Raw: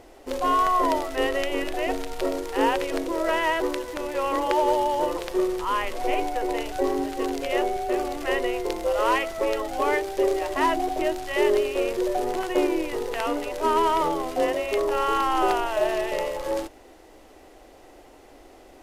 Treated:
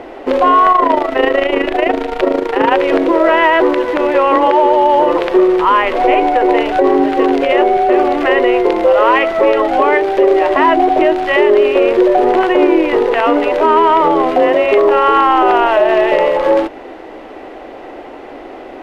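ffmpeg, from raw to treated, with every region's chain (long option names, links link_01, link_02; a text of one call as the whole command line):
ffmpeg -i in.wav -filter_complex "[0:a]asettb=1/sr,asplit=3[link_01][link_02][link_03];[link_01]atrim=end=0.724[link_04];[link_02]atrim=start=0.72:end=2.72,asetpts=PTS-STARTPTS,afade=type=in:duration=0.004:curve=qsin,afade=type=out:start_time=1.996:duration=0.004:curve=qsin,tremolo=f=27:d=0.71,aeval=exprs='0.15*(abs(mod(val(0)/0.15+3,4)-2)-1)':channel_layout=same[link_05];[link_03]atrim=start=2.716[link_06];[link_04][link_05]acrossfade=duration=0.004:curve1=hsin:curve2=qsin[link_07];[link_07][link_06]acrossfade=duration=0.004:curve1=qsin:curve2=hsin,acrossover=split=160 3200:gain=0.2 1 0.0631[link_08][link_09][link_10];[link_08][link_09][link_10]amix=inputs=3:normalize=0,acompressor=threshold=-32dB:ratio=1.5,alimiter=level_in=20.5dB:limit=-1dB:release=50:level=0:latency=1,volume=-1dB" out.wav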